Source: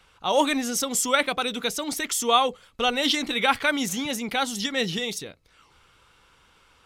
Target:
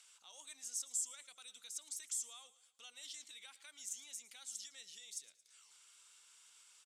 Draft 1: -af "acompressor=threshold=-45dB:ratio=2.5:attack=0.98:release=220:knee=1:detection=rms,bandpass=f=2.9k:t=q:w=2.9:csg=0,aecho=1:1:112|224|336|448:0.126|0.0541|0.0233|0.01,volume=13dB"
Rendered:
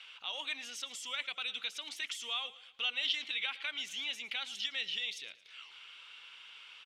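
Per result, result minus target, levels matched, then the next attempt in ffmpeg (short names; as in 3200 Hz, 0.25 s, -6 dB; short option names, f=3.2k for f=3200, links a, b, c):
8000 Hz band -16.0 dB; compressor: peak gain reduction -6.5 dB
-af "acompressor=threshold=-45dB:ratio=2.5:attack=0.98:release=220:knee=1:detection=rms,bandpass=f=7.8k:t=q:w=2.9:csg=0,aecho=1:1:112|224|336|448:0.126|0.0541|0.0233|0.01,volume=13dB"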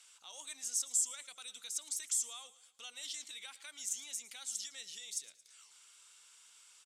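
compressor: peak gain reduction -6.5 dB
-af "acompressor=threshold=-56dB:ratio=2.5:attack=0.98:release=220:knee=1:detection=rms,bandpass=f=7.8k:t=q:w=2.9:csg=0,aecho=1:1:112|224|336|448:0.126|0.0541|0.0233|0.01,volume=13dB"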